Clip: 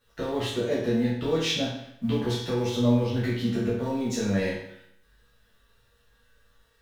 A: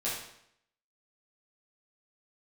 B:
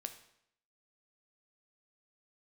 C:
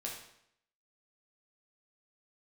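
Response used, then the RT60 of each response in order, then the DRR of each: A; 0.70 s, 0.70 s, 0.70 s; -9.0 dB, 7.5 dB, -2.5 dB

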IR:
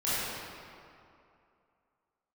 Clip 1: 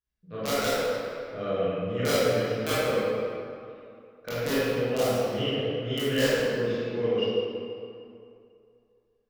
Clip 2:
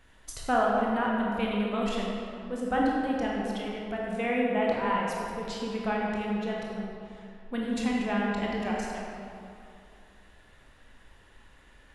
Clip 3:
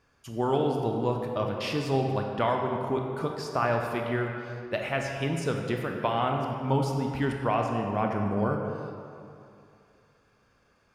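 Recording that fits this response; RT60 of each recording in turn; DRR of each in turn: 1; 2.6 s, 2.6 s, 2.6 s; -13.0 dB, -3.5 dB, 1.5 dB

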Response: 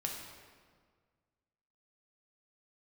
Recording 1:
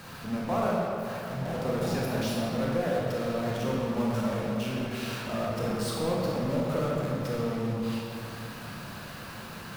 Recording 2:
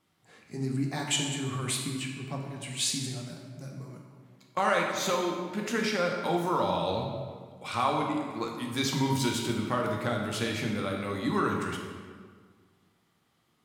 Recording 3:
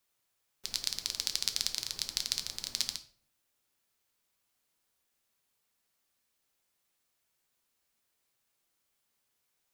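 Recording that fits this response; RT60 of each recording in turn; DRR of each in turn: 2; 2.8 s, 1.7 s, 0.50 s; -4.5 dB, -0.5 dB, 8.0 dB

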